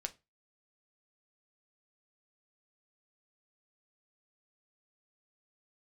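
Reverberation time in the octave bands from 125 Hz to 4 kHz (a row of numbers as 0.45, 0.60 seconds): 0.35, 0.25, 0.25, 0.25, 0.20, 0.20 seconds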